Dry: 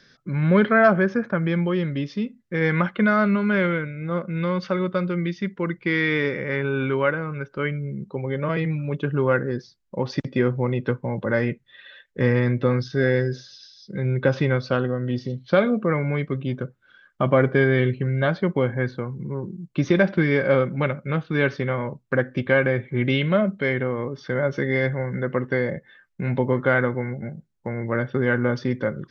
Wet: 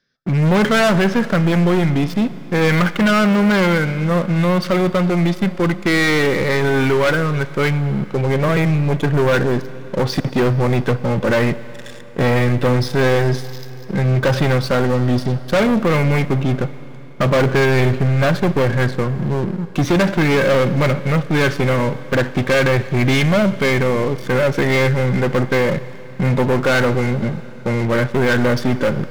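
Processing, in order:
leveller curve on the samples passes 5
four-comb reverb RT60 3.7 s, combs from 31 ms, DRR 15 dB
level −6 dB

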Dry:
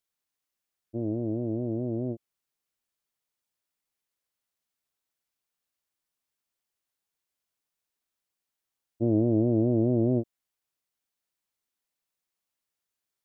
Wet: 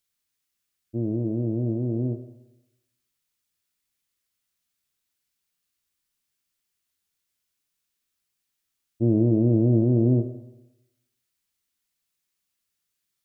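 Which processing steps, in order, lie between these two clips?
parametric band 690 Hz −10 dB 1.8 octaves
on a send: convolution reverb RT60 0.90 s, pre-delay 11 ms, DRR 7.5 dB
on the sum: level +6.5 dB

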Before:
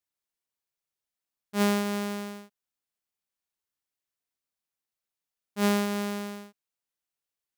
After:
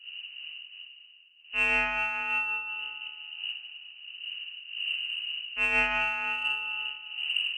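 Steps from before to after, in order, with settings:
wind on the microphone 160 Hz −43 dBFS
parametric band 680 Hz −7.5 dB 0.93 octaves
voice inversion scrambler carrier 2,900 Hz
spring reverb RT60 2.1 s, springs 39/44/51 ms, chirp 70 ms, DRR −1.5 dB
in parallel at −7 dB: soft clipping −23.5 dBFS, distortion −13 dB
on the sum: amplitude modulation by smooth noise, depth 60%
level +1.5 dB

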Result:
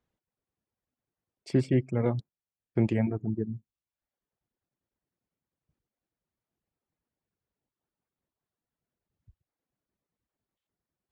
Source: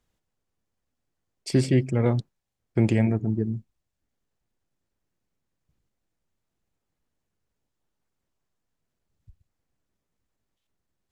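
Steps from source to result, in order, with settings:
high-pass filter 90 Hz 6 dB per octave
reverb reduction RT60 0.65 s
low-pass filter 1,900 Hz 6 dB per octave
level −2.5 dB

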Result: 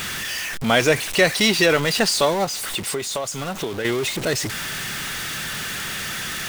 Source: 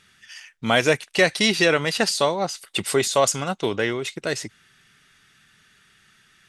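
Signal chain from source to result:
converter with a step at zero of −23 dBFS
0:02.44–0:03.85: downward compressor 6 to 1, threshold −24 dBFS, peak gain reduction 11.5 dB

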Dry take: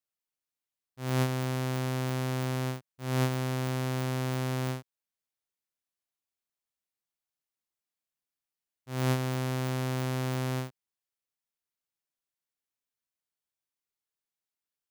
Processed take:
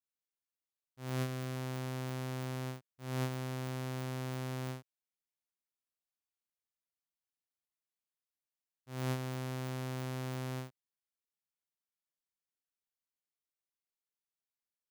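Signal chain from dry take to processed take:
0:01.16–0:01.56: notch filter 870 Hz, Q 5.6
level −8 dB

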